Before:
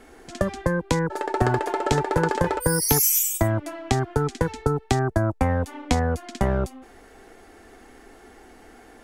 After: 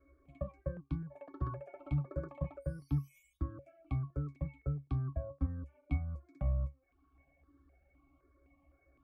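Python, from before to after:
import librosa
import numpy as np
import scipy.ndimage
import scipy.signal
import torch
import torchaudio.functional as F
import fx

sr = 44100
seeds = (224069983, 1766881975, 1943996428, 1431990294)

y = fx.dereverb_blind(x, sr, rt60_s=0.65)
y = fx.octave_resonator(y, sr, note='C#', decay_s=0.18)
y = fx.phaser_held(y, sr, hz=3.9, low_hz=800.0, high_hz=2400.0)
y = F.gain(torch.from_numpy(y), -1.5).numpy()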